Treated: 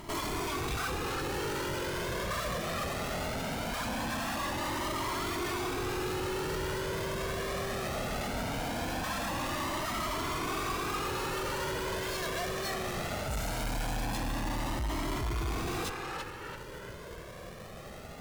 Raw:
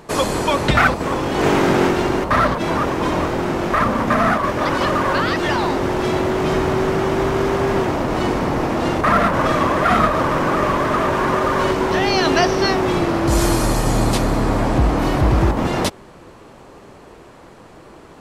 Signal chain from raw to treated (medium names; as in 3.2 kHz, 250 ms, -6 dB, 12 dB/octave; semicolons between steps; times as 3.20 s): square wave that keeps the level; band-passed feedback delay 336 ms, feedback 44%, band-pass 1.5 kHz, level -7 dB; valve stage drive 29 dB, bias 0.6; Shepard-style flanger rising 0.2 Hz